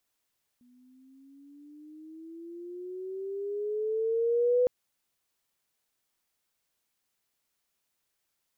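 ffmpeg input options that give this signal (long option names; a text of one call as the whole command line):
ffmpeg -f lavfi -i "aevalsrc='pow(10,(-20+37.5*(t/4.06-1))/20)*sin(2*PI*243*4.06/(12.5*log(2)/12)*(exp(12.5*log(2)/12*t/4.06)-1))':duration=4.06:sample_rate=44100" out.wav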